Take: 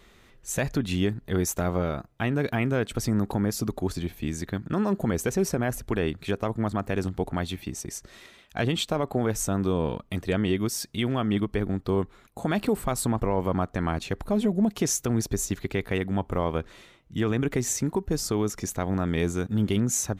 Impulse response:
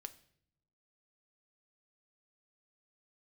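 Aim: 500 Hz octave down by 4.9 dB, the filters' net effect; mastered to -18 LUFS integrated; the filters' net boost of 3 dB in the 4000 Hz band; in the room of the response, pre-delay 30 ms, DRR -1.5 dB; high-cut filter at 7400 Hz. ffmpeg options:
-filter_complex "[0:a]lowpass=7.4k,equalizer=f=500:t=o:g=-6.5,equalizer=f=4k:t=o:g=4.5,asplit=2[a][b];[1:a]atrim=start_sample=2205,adelay=30[c];[b][c]afir=irnorm=-1:irlink=0,volume=6.5dB[d];[a][d]amix=inputs=2:normalize=0,volume=7dB"

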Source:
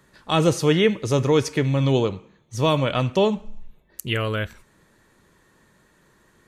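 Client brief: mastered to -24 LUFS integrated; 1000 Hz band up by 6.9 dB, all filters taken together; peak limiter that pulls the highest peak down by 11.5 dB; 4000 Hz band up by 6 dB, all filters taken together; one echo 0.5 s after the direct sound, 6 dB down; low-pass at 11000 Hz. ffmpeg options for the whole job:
-af "lowpass=11k,equalizer=f=1k:t=o:g=8,equalizer=f=4k:t=o:g=7.5,alimiter=limit=-14dB:level=0:latency=1,aecho=1:1:500:0.501,volume=0.5dB"

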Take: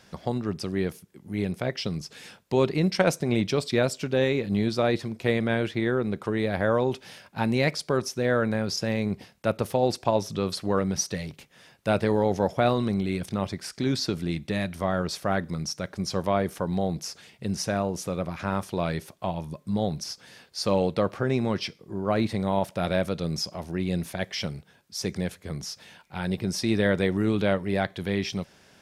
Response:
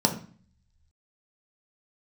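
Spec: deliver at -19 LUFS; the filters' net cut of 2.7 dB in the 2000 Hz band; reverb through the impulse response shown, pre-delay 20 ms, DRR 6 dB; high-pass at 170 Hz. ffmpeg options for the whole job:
-filter_complex "[0:a]highpass=170,equalizer=f=2k:t=o:g=-3.5,asplit=2[a][b];[1:a]atrim=start_sample=2205,adelay=20[c];[b][c]afir=irnorm=-1:irlink=0,volume=-18.5dB[d];[a][d]amix=inputs=2:normalize=0,volume=6.5dB"

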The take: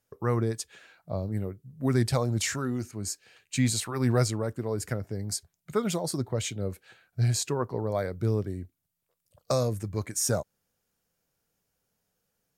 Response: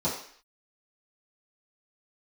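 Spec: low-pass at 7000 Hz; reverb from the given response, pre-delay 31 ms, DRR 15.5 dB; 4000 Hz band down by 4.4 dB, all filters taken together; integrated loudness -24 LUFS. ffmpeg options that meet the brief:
-filter_complex "[0:a]lowpass=7k,equalizer=f=4k:t=o:g=-5,asplit=2[a][b];[1:a]atrim=start_sample=2205,adelay=31[c];[b][c]afir=irnorm=-1:irlink=0,volume=-25dB[d];[a][d]amix=inputs=2:normalize=0,volume=6dB"

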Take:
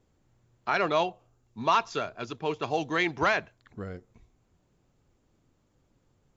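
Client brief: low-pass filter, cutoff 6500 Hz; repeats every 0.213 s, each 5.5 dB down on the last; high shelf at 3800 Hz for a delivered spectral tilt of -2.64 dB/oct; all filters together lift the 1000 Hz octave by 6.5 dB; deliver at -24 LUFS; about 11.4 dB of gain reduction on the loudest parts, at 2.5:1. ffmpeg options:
-af "lowpass=6.5k,equalizer=f=1k:t=o:g=7.5,highshelf=f=3.8k:g=6,acompressor=threshold=-30dB:ratio=2.5,aecho=1:1:213|426|639|852|1065|1278|1491:0.531|0.281|0.149|0.079|0.0419|0.0222|0.0118,volume=8dB"

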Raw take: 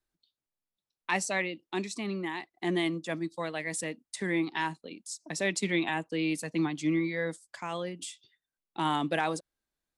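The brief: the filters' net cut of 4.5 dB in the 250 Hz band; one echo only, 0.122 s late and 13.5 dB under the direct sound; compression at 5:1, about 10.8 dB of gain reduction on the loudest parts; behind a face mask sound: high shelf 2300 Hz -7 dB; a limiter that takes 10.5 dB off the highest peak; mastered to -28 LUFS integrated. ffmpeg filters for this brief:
-af "equalizer=f=250:t=o:g=-7,acompressor=threshold=-37dB:ratio=5,alimiter=level_in=7.5dB:limit=-24dB:level=0:latency=1,volume=-7.5dB,highshelf=f=2.3k:g=-7,aecho=1:1:122:0.211,volume=16.5dB"

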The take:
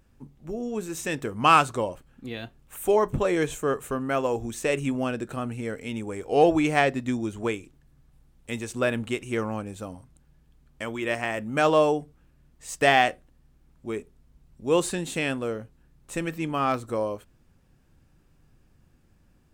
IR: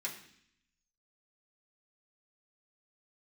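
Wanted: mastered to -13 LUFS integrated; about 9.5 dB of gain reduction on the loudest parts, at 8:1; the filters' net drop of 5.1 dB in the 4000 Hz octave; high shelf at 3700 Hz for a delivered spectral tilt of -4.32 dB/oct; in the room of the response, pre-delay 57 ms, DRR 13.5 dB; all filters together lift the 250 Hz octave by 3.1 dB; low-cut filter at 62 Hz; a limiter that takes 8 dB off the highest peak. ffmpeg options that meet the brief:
-filter_complex "[0:a]highpass=62,equalizer=f=250:t=o:g=4,highshelf=f=3.7k:g=-4,equalizer=f=4k:t=o:g=-5,acompressor=threshold=-22dB:ratio=8,alimiter=limit=-19.5dB:level=0:latency=1,asplit=2[a][b];[1:a]atrim=start_sample=2205,adelay=57[c];[b][c]afir=irnorm=-1:irlink=0,volume=-14.5dB[d];[a][d]amix=inputs=2:normalize=0,volume=18dB"

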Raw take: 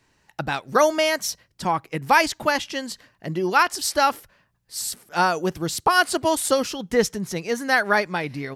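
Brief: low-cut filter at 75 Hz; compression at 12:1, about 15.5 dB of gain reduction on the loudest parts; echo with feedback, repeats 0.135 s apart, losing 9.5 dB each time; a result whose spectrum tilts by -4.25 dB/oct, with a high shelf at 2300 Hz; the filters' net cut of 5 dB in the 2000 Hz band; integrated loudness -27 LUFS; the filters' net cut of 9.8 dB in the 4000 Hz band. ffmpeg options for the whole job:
-af "highpass=75,equalizer=f=2k:t=o:g=-3.5,highshelf=f=2.3k:g=-4,equalizer=f=4k:t=o:g=-8.5,acompressor=threshold=-30dB:ratio=12,aecho=1:1:135|270|405|540:0.335|0.111|0.0365|0.012,volume=8dB"

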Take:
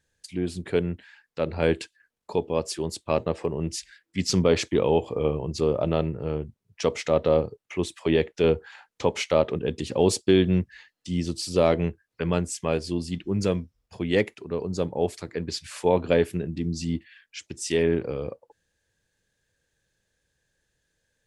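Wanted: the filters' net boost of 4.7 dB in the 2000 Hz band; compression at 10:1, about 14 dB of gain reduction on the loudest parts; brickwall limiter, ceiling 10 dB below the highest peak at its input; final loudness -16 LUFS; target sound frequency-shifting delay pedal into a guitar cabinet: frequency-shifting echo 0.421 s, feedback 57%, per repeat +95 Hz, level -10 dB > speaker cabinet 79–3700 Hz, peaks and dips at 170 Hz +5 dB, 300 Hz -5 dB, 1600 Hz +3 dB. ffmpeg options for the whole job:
-filter_complex "[0:a]equalizer=f=2k:t=o:g=4.5,acompressor=threshold=-29dB:ratio=10,alimiter=limit=-24dB:level=0:latency=1,asplit=8[a][b][c][d][e][f][g][h];[b]adelay=421,afreqshift=95,volume=-10dB[i];[c]adelay=842,afreqshift=190,volume=-14.9dB[j];[d]adelay=1263,afreqshift=285,volume=-19.8dB[k];[e]adelay=1684,afreqshift=380,volume=-24.6dB[l];[f]adelay=2105,afreqshift=475,volume=-29.5dB[m];[g]adelay=2526,afreqshift=570,volume=-34.4dB[n];[h]adelay=2947,afreqshift=665,volume=-39.3dB[o];[a][i][j][k][l][m][n][o]amix=inputs=8:normalize=0,highpass=79,equalizer=f=170:t=q:w=4:g=5,equalizer=f=300:t=q:w=4:g=-5,equalizer=f=1.6k:t=q:w=4:g=3,lowpass=f=3.7k:w=0.5412,lowpass=f=3.7k:w=1.3066,volume=21dB"

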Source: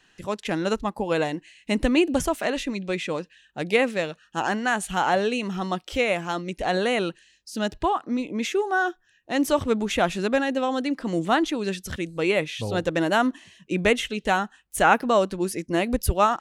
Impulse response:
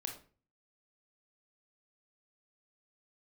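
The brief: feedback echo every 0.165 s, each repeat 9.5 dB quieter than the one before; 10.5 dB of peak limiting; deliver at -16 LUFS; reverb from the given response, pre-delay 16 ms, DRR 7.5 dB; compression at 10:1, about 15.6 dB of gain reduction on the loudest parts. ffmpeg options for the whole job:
-filter_complex "[0:a]acompressor=threshold=-30dB:ratio=10,alimiter=level_in=5.5dB:limit=-24dB:level=0:latency=1,volume=-5.5dB,aecho=1:1:165|330|495|660:0.335|0.111|0.0365|0.012,asplit=2[a][b];[1:a]atrim=start_sample=2205,adelay=16[c];[b][c]afir=irnorm=-1:irlink=0,volume=-6.5dB[d];[a][d]amix=inputs=2:normalize=0,volume=21.5dB"

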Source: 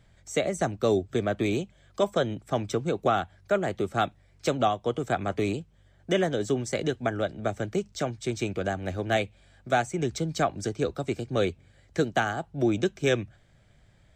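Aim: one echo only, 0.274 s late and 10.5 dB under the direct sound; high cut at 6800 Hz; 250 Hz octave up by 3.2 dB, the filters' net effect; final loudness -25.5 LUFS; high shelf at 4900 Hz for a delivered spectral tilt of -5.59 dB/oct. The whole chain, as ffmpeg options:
-af "lowpass=6.8k,equalizer=f=250:t=o:g=4.5,highshelf=f=4.9k:g=-4,aecho=1:1:274:0.299,volume=1.5dB"

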